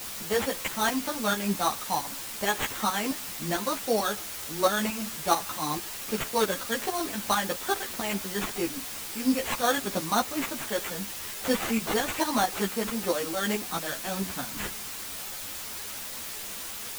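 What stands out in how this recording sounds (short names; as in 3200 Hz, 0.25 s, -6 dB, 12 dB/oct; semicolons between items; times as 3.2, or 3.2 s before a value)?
aliases and images of a low sample rate 5000 Hz, jitter 0%; tremolo saw up 4.5 Hz, depth 70%; a quantiser's noise floor 6-bit, dither triangular; a shimmering, thickened sound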